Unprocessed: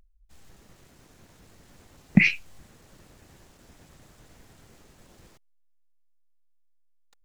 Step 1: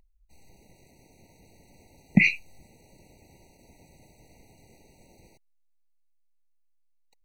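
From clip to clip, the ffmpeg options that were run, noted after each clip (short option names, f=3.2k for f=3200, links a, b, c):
-af "lowshelf=f=170:g=-3.5,afftfilt=real='re*eq(mod(floor(b*sr/1024/950),2),0)':imag='im*eq(mod(floor(b*sr/1024/950),2),0)':win_size=1024:overlap=0.75"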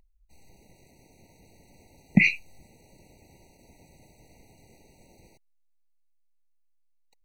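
-af anull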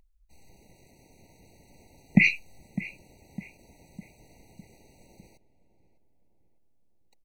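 -filter_complex "[0:a]asplit=2[a][b];[b]adelay=605,lowpass=f=1.6k:p=1,volume=-13.5dB,asplit=2[c][d];[d]adelay=605,lowpass=f=1.6k:p=1,volume=0.52,asplit=2[e][f];[f]adelay=605,lowpass=f=1.6k:p=1,volume=0.52,asplit=2[g][h];[h]adelay=605,lowpass=f=1.6k:p=1,volume=0.52,asplit=2[i][j];[j]adelay=605,lowpass=f=1.6k:p=1,volume=0.52[k];[a][c][e][g][i][k]amix=inputs=6:normalize=0"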